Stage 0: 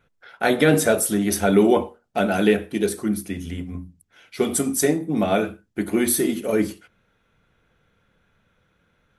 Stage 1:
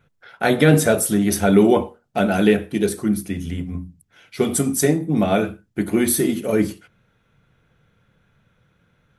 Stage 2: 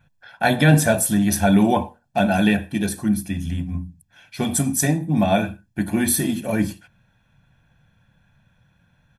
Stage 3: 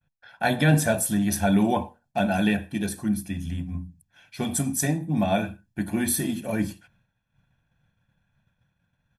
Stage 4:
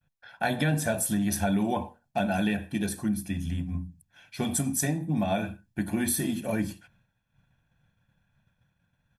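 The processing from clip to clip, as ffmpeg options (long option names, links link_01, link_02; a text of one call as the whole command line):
ffmpeg -i in.wav -af "equalizer=frequency=130:width_type=o:width=0.92:gain=8.5,volume=1dB" out.wav
ffmpeg -i in.wav -af "aecho=1:1:1.2:0.74,volume=-1.5dB" out.wav
ffmpeg -i in.wav -af "agate=range=-33dB:threshold=-53dB:ratio=3:detection=peak,volume=-5dB" out.wav
ffmpeg -i in.wav -af "acompressor=threshold=-24dB:ratio=3" out.wav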